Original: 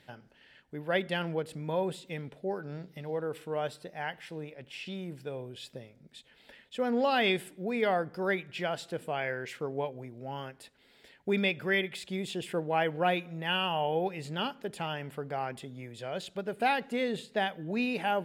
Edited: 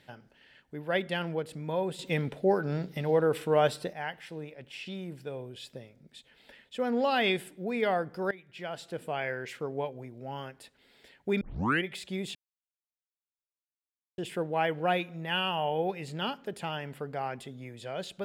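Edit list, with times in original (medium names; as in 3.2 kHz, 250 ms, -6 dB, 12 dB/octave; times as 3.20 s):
1.99–3.93 s: gain +9 dB
8.31–9.06 s: fade in, from -19.5 dB
11.41 s: tape start 0.43 s
12.35 s: insert silence 1.83 s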